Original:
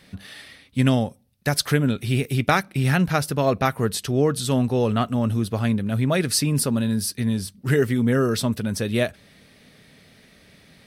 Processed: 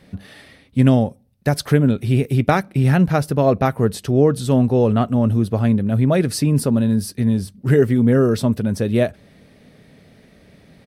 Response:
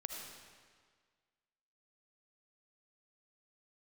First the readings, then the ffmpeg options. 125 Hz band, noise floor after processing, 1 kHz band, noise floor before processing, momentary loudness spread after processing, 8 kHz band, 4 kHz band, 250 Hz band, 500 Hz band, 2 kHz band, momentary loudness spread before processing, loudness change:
+5.5 dB, -51 dBFS, +2.0 dB, -54 dBFS, 6 LU, -4.5 dB, -4.5 dB, +5.5 dB, +5.5 dB, -1.5 dB, 5 LU, +4.5 dB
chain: -af "firequalizer=gain_entry='entry(570,0);entry(1200,-6);entry(3400,-10)':delay=0.05:min_phase=1,volume=1.88"

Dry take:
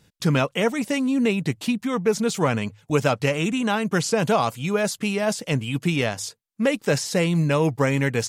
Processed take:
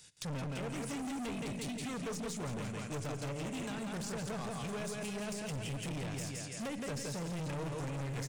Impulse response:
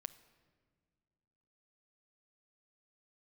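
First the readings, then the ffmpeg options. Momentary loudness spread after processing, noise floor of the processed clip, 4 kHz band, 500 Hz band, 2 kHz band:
1 LU, -43 dBFS, -15.0 dB, -19.0 dB, -18.0 dB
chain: -filter_complex "[0:a]aresample=22050,aresample=44100,acrossover=split=2100[s0][s1];[s1]acompressor=threshold=0.0112:ratio=6[s2];[s0][s2]amix=inputs=2:normalize=0,crystalizer=i=8.5:c=0,aecho=1:1:168|336|504|672|840|1008|1176:0.531|0.281|0.149|0.079|0.0419|0.0222|0.0118,aeval=exprs='0.708*(cos(1*acos(clip(val(0)/0.708,-1,1)))-cos(1*PI/2))+0.0224*(cos(4*acos(clip(val(0)/0.708,-1,1)))-cos(4*PI/2))':c=same[s3];[1:a]atrim=start_sample=2205[s4];[s3][s4]afir=irnorm=-1:irlink=0,acrossover=split=380[s5][s6];[s6]acompressor=threshold=0.0141:ratio=4[s7];[s5][s7]amix=inputs=2:normalize=0,asoftclip=type=hard:threshold=0.0316,equalizer=f=220:w=0.66:g=-3.5,volume=0.596"

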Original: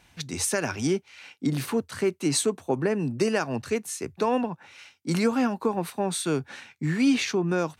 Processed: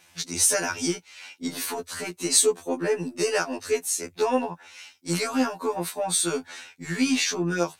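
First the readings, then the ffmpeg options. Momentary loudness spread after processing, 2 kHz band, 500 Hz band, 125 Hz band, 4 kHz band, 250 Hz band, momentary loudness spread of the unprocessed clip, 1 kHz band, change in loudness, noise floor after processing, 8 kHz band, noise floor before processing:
14 LU, +2.0 dB, 0.0 dB, -5.5 dB, +4.5 dB, -3.0 dB, 9 LU, +0.5 dB, +1.5 dB, -58 dBFS, +8.0 dB, -62 dBFS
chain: -af "aeval=exprs='0.266*(cos(1*acos(clip(val(0)/0.266,-1,1)))-cos(1*PI/2))+0.00237*(cos(8*acos(clip(val(0)/0.266,-1,1)))-cos(8*PI/2))':c=same,bass=f=250:g=-10,treble=f=4000:g=7,afftfilt=real='re*2*eq(mod(b,4),0)':imag='im*2*eq(mod(b,4),0)':win_size=2048:overlap=0.75,volume=1.5"

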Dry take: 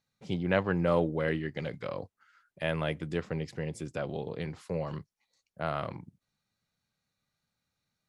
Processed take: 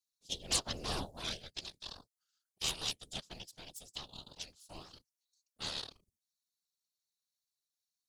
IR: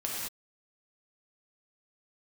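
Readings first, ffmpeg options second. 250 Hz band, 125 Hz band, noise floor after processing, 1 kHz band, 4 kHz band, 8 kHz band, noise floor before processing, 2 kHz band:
-17.5 dB, -16.5 dB, under -85 dBFS, -10.5 dB, +8.5 dB, +16.0 dB, under -85 dBFS, -11.0 dB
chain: -af "aeval=exprs='0.316*(cos(1*acos(clip(val(0)/0.316,-1,1)))-cos(1*PI/2))+0.0891*(cos(3*acos(clip(val(0)/0.316,-1,1)))-cos(3*PI/2))+0.0891*(cos(6*acos(clip(val(0)/0.316,-1,1)))-cos(6*PI/2))':c=same,aexciter=amount=13.5:drive=8:freq=3300,afftfilt=real='hypot(re,im)*cos(2*PI*random(0))':imag='hypot(re,im)*sin(2*PI*random(1))':win_size=512:overlap=0.75,volume=0.398"

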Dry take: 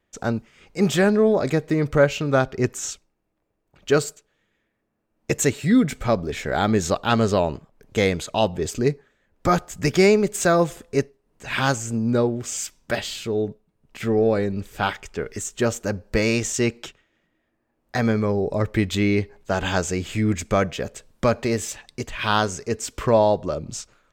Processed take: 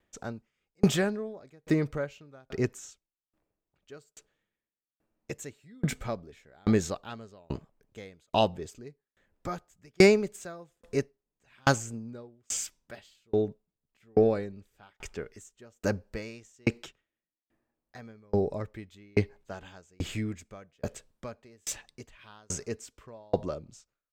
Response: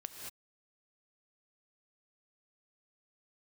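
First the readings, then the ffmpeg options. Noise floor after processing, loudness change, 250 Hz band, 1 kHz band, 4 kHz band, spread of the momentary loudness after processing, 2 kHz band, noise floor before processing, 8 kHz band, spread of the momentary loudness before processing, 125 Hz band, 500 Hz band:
under -85 dBFS, -8.5 dB, -9.5 dB, -12.0 dB, -10.0 dB, 21 LU, -10.5 dB, -73 dBFS, -9.5 dB, 12 LU, -9.5 dB, -9.5 dB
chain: -af "aeval=exprs='val(0)*pow(10,-40*if(lt(mod(1.2*n/s,1),2*abs(1.2)/1000),1-mod(1.2*n/s,1)/(2*abs(1.2)/1000),(mod(1.2*n/s,1)-2*abs(1.2)/1000)/(1-2*abs(1.2)/1000))/20)':c=same"

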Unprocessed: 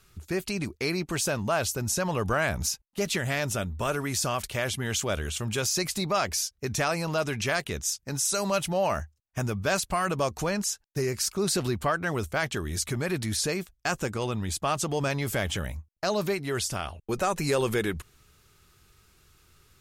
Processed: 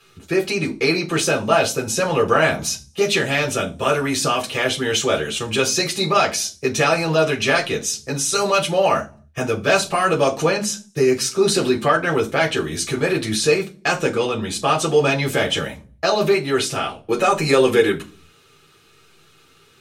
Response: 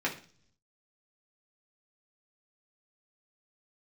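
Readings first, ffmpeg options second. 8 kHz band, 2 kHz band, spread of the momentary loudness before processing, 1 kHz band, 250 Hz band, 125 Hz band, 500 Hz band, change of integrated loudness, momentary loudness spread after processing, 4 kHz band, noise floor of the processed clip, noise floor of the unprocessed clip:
+5.5 dB, +10.0 dB, 5 LU, +9.5 dB, +8.5 dB, +4.0 dB, +11.5 dB, +9.0 dB, 6 LU, +9.5 dB, -53 dBFS, -70 dBFS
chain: -filter_complex "[1:a]atrim=start_sample=2205,asetrate=70560,aresample=44100[s0];[0:a][s0]afir=irnorm=-1:irlink=0,volume=2.11"

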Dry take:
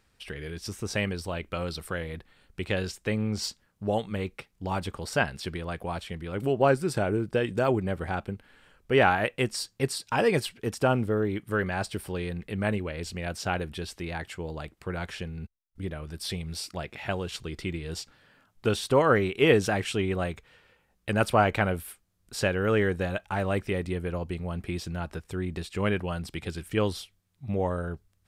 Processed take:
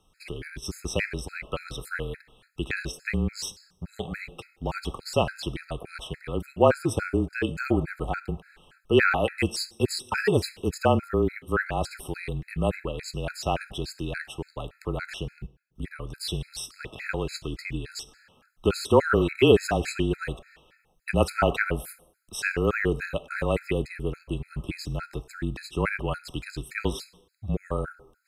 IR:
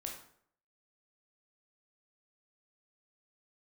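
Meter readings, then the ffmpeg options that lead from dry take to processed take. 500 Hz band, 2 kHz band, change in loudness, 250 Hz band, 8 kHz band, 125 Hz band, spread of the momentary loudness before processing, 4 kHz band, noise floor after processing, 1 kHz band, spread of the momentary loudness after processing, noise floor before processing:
+0.5 dB, +1.0 dB, +1.0 dB, +1.0 dB, +1.0 dB, +0.5 dB, 14 LU, +1.0 dB, -66 dBFS, -0.5 dB, 16 LU, -69 dBFS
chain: -filter_complex "[0:a]afreqshift=-30,asplit=2[s0][s1];[1:a]atrim=start_sample=2205,asetrate=31752,aresample=44100,lowshelf=f=350:g=-9.5[s2];[s1][s2]afir=irnorm=-1:irlink=0,volume=0.266[s3];[s0][s3]amix=inputs=2:normalize=0,afftfilt=real='re*gt(sin(2*PI*3.5*pts/sr)*(1-2*mod(floor(b*sr/1024/1300),2)),0)':imag='im*gt(sin(2*PI*3.5*pts/sr)*(1-2*mod(floor(b*sr/1024/1300),2)),0)':win_size=1024:overlap=0.75,volume=1.41"

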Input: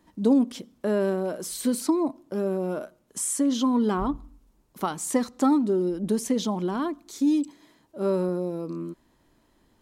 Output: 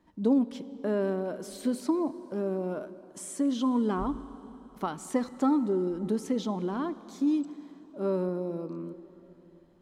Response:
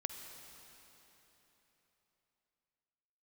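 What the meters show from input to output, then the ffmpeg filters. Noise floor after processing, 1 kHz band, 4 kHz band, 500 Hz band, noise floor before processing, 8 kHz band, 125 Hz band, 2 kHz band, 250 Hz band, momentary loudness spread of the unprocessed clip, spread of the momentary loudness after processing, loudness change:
-56 dBFS, -4.0 dB, -8.0 dB, -4.0 dB, -65 dBFS, -12.5 dB, -4.0 dB, -5.0 dB, -4.0 dB, 10 LU, 14 LU, -4.0 dB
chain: -filter_complex "[0:a]aemphasis=mode=reproduction:type=cd,asplit=2[s0][s1];[1:a]atrim=start_sample=2205,highshelf=f=8300:g=-9[s2];[s1][s2]afir=irnorm=-1:irlink=0,volume=0.631[s3];[s0][s3]amix=inputs=2:normalize=0,volume=0.398"

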